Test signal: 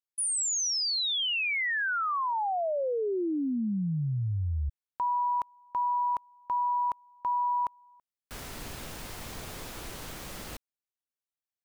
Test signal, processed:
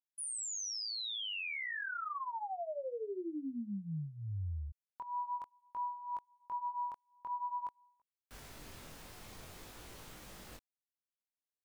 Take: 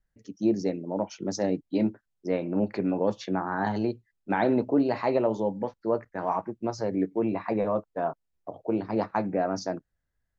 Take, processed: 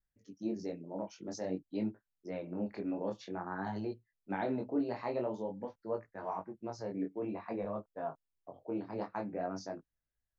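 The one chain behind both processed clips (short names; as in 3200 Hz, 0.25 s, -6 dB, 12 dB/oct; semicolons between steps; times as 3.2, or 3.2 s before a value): chorus 0.5 Hz, delay 19 ms, depth 6.1 ms; gain -8 dB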